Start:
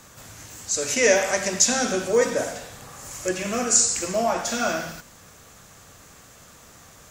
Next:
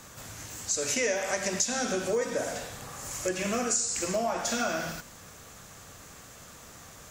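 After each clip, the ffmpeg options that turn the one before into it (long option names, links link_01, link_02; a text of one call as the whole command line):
ffmpeg -i in.wav -af "acompressor=threshold=-26dB:ratio=5" out.wav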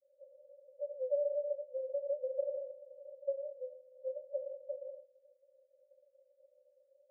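ffmpeg -i in.wav -af "asoftclip=type=hard:threshold=-30.5dB,acrusher=bits=6:mix=0:aa=0.000001,asuperpass=centerf=550:order=20:qfactor=6.2,volume=3.5dB" out.wav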